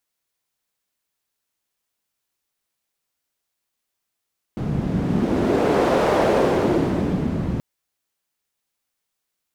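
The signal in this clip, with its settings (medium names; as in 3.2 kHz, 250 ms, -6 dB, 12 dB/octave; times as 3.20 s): wind-like swept noise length 3.03 s, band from 160 Hz, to 530 Hz, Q 1.6, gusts 1, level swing 6 dB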